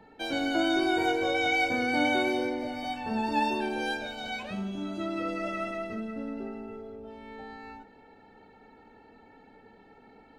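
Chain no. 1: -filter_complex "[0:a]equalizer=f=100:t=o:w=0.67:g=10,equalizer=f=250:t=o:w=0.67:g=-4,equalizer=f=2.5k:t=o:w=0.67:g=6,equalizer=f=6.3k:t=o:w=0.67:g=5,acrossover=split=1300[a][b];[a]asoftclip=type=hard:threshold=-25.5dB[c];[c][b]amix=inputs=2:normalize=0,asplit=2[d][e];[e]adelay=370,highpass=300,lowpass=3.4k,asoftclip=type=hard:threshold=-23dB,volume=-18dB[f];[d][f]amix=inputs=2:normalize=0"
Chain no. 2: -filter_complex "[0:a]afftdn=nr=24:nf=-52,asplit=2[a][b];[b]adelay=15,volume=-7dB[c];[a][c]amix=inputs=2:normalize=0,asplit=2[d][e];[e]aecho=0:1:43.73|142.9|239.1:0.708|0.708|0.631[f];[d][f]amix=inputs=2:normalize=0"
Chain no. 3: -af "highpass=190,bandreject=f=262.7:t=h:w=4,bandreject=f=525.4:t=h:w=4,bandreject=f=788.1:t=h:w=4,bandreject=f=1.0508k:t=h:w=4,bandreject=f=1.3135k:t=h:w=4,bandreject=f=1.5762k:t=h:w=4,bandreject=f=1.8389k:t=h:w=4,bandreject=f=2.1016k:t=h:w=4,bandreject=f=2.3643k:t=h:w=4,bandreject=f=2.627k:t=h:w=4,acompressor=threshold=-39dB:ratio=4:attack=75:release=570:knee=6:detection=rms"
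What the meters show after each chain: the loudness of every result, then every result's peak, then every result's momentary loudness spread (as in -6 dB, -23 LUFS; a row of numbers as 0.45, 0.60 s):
-27.5, -25.0, -40.5 LUFS; -13.5, -9.5, -26.5 dBFS; 20, 19, 18 LU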